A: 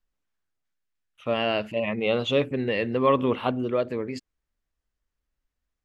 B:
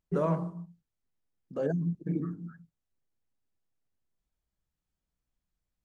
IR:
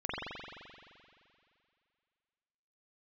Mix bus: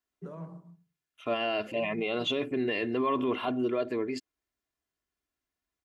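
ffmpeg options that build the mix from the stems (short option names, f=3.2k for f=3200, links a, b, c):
-filter_complex "[0:a]highpass=150,aecho=1:1:2.9:0.63,volume=-2dB,asplit=2[a][b];[1:a]highpass=41,bandreject=f=147.1:t=h:w=4,bandreject=f=294.2:t=h:w=4,bandreject=f=441.3:t=h:w=4,acrossover=split=200[c][d];[d]acompressor=threshold=-31dB:ratio=6[e];[c][e]amix=inputs=2:normalize=0,adelay=100,volume=-11dB,asplit=2[f][g];[g]volume=-22dB[h];[b]apad=whole_len=262293[i];[f][i]sidechaincompress=threshold=-27dB:ratio=8:attack=16:release=854[j];[h]aecho=0:1:111:1[k];[a][j][k]amix=inputs=3:normalize=0,alimiter=limit=-20.5dB:level=0:latency=1:release=16"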